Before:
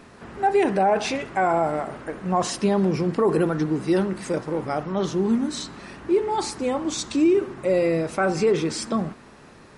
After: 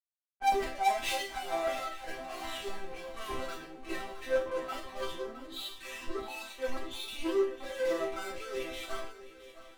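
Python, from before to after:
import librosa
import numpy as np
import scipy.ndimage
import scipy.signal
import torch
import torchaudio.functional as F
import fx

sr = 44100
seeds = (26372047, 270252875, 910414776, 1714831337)

p1 = fx.frame_reverse(x, sr, frame_ms=81.0)
p2 = fx.recorder_agc(p1, sr, target_db=-19.0, rise_db_per_s=18.0, max_gain_db=30)
p3 = scipy.signal.sosfilt(scipy.signal.butter(2, 670.0, 'highpass', fs=sr, output='sos'), p2)
p4 = fx.noise_reduce_blind(p3, sr, reduce_db=28)
p5 = fx.lpc_vocoder(p4, sr, seeds[0], excitation='pitch_kept', order=8)
p6 = fx.level_steps(p5, sr, step_db=12)
p7 = fx.fuzz(p6, sr, gain_db=45.0, gate_db=-53.0)
p8 = fx.resonator_bank(p7, sr, root=60, chord='major', decay_s=0.41)
p9 = p8 + fx.echo_swing(p8, sr, ms=887, ratio=3, feedback_pct=45, wet_db=-10.0, dry=0)
y = fx.band_widen(p9, sr, depth_pct=70)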